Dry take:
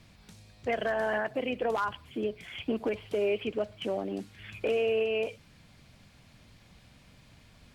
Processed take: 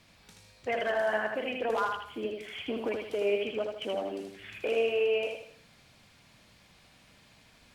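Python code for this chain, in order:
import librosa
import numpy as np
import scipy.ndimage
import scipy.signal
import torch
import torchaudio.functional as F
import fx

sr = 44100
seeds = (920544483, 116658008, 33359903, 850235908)

y = fx.low_shelf(x, sr, hz=240.0, db=-11.0)
y = fx.echo_feedback(y, sr, ms=79, feedback_pct=40, wet_db=-4.0)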